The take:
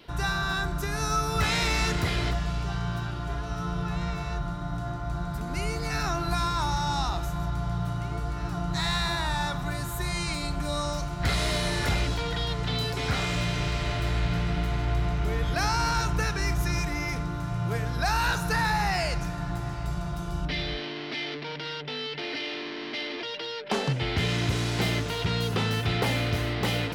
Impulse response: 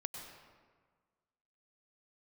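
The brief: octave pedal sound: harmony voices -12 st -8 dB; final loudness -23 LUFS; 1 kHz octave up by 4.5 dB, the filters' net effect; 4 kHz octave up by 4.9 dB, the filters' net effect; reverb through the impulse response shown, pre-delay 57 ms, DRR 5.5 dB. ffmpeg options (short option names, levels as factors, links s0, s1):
-filter_complex "[0:a]equalizer=f=1000:t=o:g=5.5,equalizer=f=4000:t=o:g=5.5,asplit=2[s0][s1];[1:a]atrim=start_sample=2205,adelay=57[s2];[s1][s2]afir=irnorm=-1:irlink=0,volume=0.596[s3];[s0][s3]amix=inputs=2:normalize=0,asplit=2[s4][s5];[s5]asetrate=22050,aresample=44100,atempo=2,volume=0.398[s6];[s4][s6]amix=inputs=2:normalize=0,volume=1.19"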